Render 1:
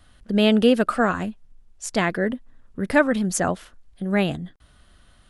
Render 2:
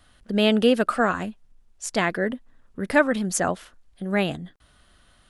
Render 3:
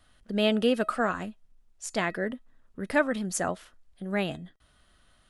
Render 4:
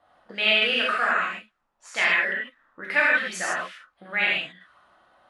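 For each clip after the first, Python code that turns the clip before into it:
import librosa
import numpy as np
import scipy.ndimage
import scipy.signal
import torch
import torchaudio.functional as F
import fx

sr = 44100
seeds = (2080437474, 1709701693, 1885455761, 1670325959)

y1 = fx.low_shelf(x, sr, hz=240.0, db=-5.5)
y2 = fx.comb_fb(y1, sr, f0_hz=640.0, decay_s=0.21, harmonics='all', damping=0.0, mix_pct=50)
y3 = fx.rev_gated(y2, sr, seeds[0], gate_ms=180, shape='flat', drr_db=-6.5)
y3 = fx.auto_wah(y3, sr, base_hz=740.0, top_hz=2300.0, q=2.2, full_db=-26.0, direction='up')
y3 = y3 * librosa.db_to_amplitude(9.0)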